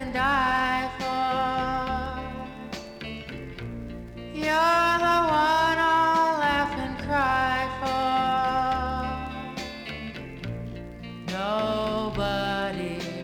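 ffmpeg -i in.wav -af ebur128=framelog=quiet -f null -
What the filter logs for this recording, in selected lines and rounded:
Integrated loudness:
  I:         -25.0 LUFS
  Threshold: -35.9 LUFS
Loudness range:
  LRA:         8.8 LU
  Threshold: -45.8 LUFS
  LRA low:   -31.2 LUFS
  LRA high:  -22.4 LUFS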